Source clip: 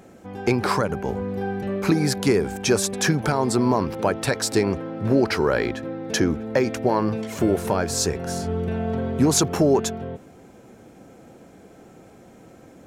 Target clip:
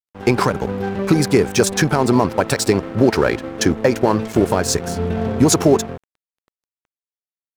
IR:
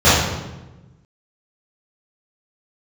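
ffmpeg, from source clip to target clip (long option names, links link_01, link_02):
-af "atempo=1.7,aeval=exprs='sgn(val(0))*max(abs(val(0))-0.0133,0)':channel_layout=same,volume=6.5dB"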